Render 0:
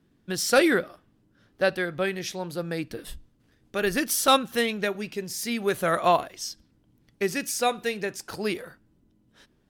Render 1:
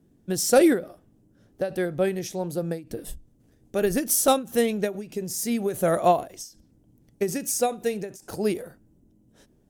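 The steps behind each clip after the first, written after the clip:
flat-topped bell 2,200 Hz −10.5 dB 2.6 octaves
every ending faded ahead of time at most 170 dB per second
level +4.5 dB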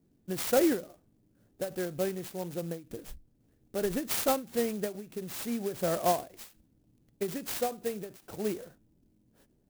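converter with an unsteady clock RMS 0.071 ms
level −7.5 dB

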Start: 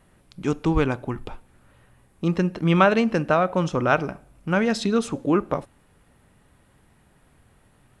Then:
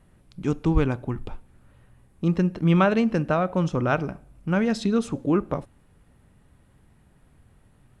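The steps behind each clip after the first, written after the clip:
low-shelf EQ 280 Hz +8.5 dB
level −5 dB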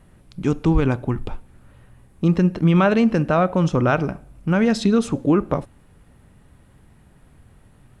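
brickwall limiter −13.5 dBFS, peak gain reduction 6 dB
level +6 dB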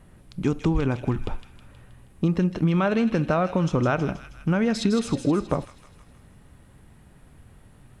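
downward compressor, threshold −18 dBFS, peak gain reduction 6.5 dB
delay with a high-pass on its return 159 ms, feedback 56%, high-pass 2,400 Hz, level −6 dB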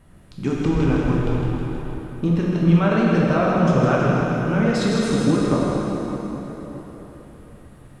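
dense smooth reverb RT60 4.2 s, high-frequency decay 0.7×, DRR −5.5 dB
level −1.5 dB

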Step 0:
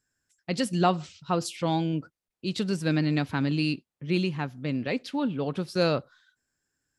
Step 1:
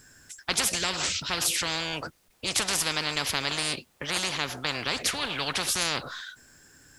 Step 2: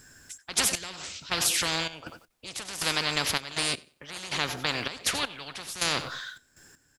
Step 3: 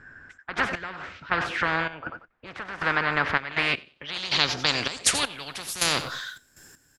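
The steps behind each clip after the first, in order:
every bin compressed towards the loudest bin 10 to 1
on a send: repeating echo 93 ms, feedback 22%, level −12 dB; on the sum: gate pattern "xx.x...x" 80 BPM −12 dB; level +1 dB
low-pass filter sweep 1,600 Hz → 14,000 Hz, 0:03.30–0:05.59; level +3 dB

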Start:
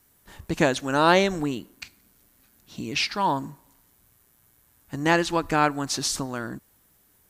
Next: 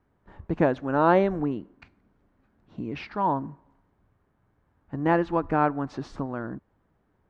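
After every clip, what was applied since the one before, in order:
low-pass filter 1,200 Hz 12 dB per octave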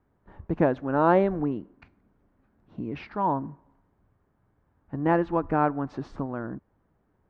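high-shelf EQ 3,000 Hz −10 dB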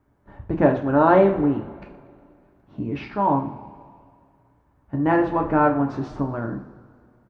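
echo with shifted repeats 120 ms, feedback 57%, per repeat −33 Hz, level −19.5 dB
coupled-rooms reverb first 0.36 s, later 2.4 s, from −21 dB, DRR 2 dB
level +3 dB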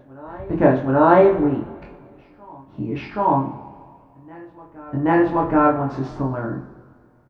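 double-tracking delay 23 ms −2 dB
backwards echo 778 ms −23.5 dB

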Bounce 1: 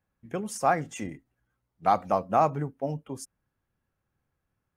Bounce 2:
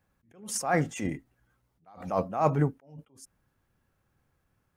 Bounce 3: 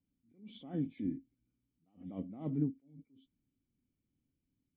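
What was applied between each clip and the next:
level that may rise only so fast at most 120 dB per second; level +7 dB
hearing-aid frequency compression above 1,300 Hz 1.5 to 1; formant resonators in series i

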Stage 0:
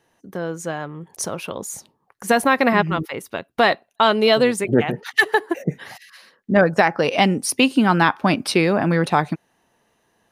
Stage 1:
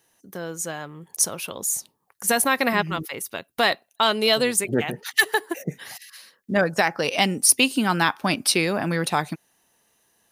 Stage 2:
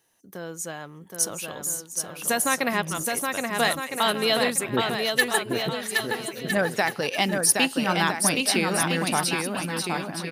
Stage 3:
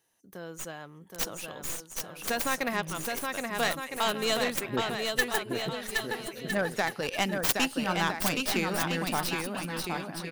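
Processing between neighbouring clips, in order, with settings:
first-order pre-emphasis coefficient 0.8; level +7.5 dB
bouncing-ball delay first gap 770 ms, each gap 0.7×, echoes 5; level −3.5 dB
stylus tracing distortion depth 0.32 ms; level −5.5 dB

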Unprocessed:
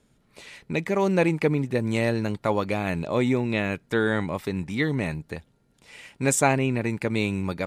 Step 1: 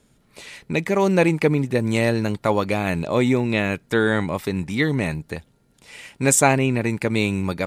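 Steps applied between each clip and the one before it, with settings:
high-shelf EQ 5,800 Hz +4.5 dB
level +4 dB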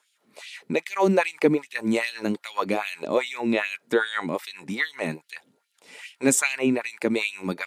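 auto-filter high-pass sine 2.5 Hz 220–3,300 Hz
level −4.5 dB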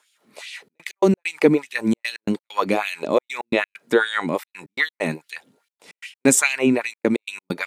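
gate pattern "xxxxxx.x.x." 132 BPM −60 dB
level +4.5 dB

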